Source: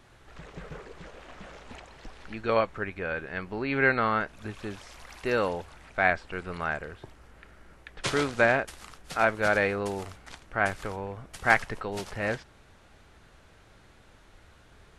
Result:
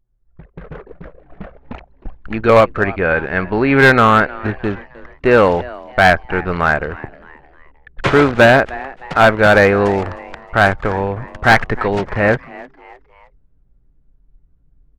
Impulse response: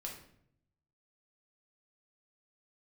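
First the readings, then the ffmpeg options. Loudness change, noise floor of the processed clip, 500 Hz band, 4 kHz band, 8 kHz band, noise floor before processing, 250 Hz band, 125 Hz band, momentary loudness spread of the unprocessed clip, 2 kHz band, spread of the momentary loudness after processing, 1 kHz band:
+14.5 dB, -56 dBFS, +15.5 dB, +14.0 dB, n/a, -57 dBFS, +16.5 dB, +17.5 dB, 23 LU, +13.0 dB, 13 LU, +14.5 dB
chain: -filter_complex "[0:a]lowpass=9.6k,agate=range=-7dB:threshold=-45dB:ratio=16:detection=peak,asoftclip=type=tanh:threshold=-13.5dB,acrossover=split=2500[a][b];[b]acompressor=threshold=-53dB:ratio=4:attack=1:release=60[c];[a][c]amix=inputs=2:normalize=0,anlmdn=0.158,asplit=4[d][e][f][g];[e]adelay=309,afreqshift=130,volume=-20.5dB[h];[f]adelay=618,afreqshift=260,volume=-28dB[i];[g]adelay=927,afreqshift=390,volume=-35.6dB[j];[d][h][i][j]amix=inputs=4:normalize=0,dynaudnorm=f=690:g=3:m=10dB,volume=10.5dB,asoftclip=hard,volume=-10.5dB,volume=7.5dB"

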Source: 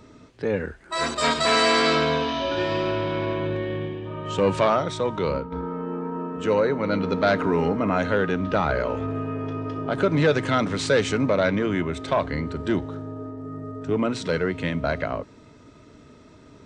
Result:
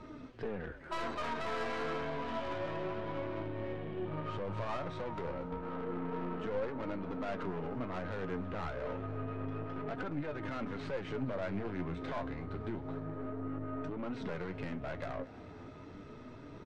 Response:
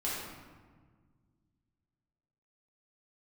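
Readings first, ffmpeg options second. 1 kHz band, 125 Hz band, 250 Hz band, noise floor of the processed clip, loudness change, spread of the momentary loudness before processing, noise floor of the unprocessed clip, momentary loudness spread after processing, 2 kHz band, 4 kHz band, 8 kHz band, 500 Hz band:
-14.5 dB, -12.5 dB, -14.0 dB, -50 dBFS, -15.5 dB, 11 LU, -50 dBFS, 5 LU, -16.5 dB, -22.5 dB, under -25 dB, -15.5 dB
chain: -filter_complex "[0:a]aemphasis=mode=reproduction:type=riaa,bandreject=f=7.2k:w=12,acrossover=split=2700[a][b];[b]acompressor=threshold=-52dB:ratio=4:attack=1:release=60[c];[a][c]amix=inputs=2:normalize=0,alimiter=limit=-16.5dB:level=0:latency=1:release=309,acompressor=threshold=-26dB:ratio=6,asplit=2[d][e];[e]highpass=f=720:p=1,volume=18dB,asoftclip=type=tanh:threshold=-19dB[f];[d][f]amix=inputs=2:normalize=0,lowpass=f=7.1k:p=1,volume=-6dB,flanger=delay=5.2:depth=5.1:regen=73:speed=1:shape=triangular,aeval=exprs='(tanh(20*val(0)+0.55)-tanh(0.55))/20':c=same,flanger=delay=3.2:depth=8.5:regen=54:speed=0.29:shape=sinusoidal,asplit=2[g][h];[h]asplit=6[i][j][k][l][m][n];[i]adelay=235,afreqshift=69,volume=-19dB[o];[j]adelay=470,afreqshift=138,volume=-23dB[p];[k]adelay=705,afreqshift=207,volume=-27dB[q];[l]adelay=940,afreqshift=276,volume=-31dB[r];[m]adelay=1175,afreqshift=345,volume=-35.1dB[s];[n]adelay=1410,afreqshift=414,volume=-39.1dB[t];[o][p][q][r][s][t]amix=inputs=6:normalize=0[u];[g][u]amix=inputs=2:normalize=0"

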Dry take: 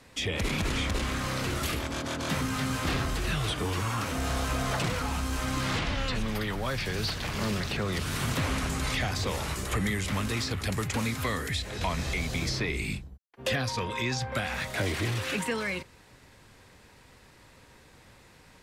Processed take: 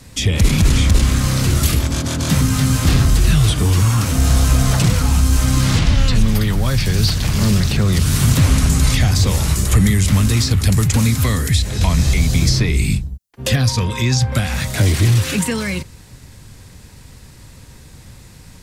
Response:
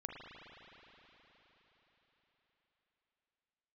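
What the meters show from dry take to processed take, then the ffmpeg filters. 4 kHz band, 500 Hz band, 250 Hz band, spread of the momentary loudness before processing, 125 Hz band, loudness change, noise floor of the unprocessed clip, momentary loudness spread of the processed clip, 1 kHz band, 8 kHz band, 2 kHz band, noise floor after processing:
+10.5 dB, +7.0 dB, +14.0 dB, 2 LU, +18.5 dB, +14.5 dB, -56 dBFS, 5 LU, +5.5 dB, +15.5 dB, +6.5 dB, -42 dBFS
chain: -af "bass=f=250:g=14,treble=f=4k:g=11,volume=5.5dB"

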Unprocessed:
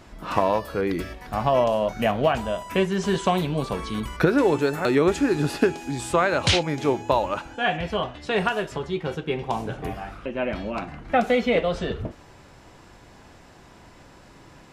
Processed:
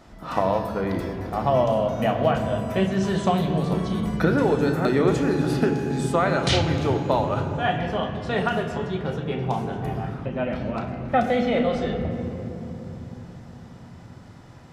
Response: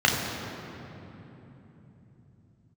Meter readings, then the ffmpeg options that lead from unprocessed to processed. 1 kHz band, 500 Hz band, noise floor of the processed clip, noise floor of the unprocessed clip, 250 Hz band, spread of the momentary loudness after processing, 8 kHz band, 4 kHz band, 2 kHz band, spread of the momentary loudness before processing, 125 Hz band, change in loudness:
0.0 dB, -0.5 dB, -44 dBFS, -50 dBFS, +2.0 dB, 12 LU, -3.5 dB, -2.5 dB, -2.5 dB, 10 LU, +5.0 dB, +0.5 dB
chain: -filter_complex "[0:a]asplit=2[a][b];[1:a]atrim=start_sample=2205,lowshelf=f=150:g=6.5[c];[b][c]afir=irnorm=-1:irlink=0,volume=-20dB[d];[a][d]amix=inputs=2:normalize=0,volume=-3.5dB"

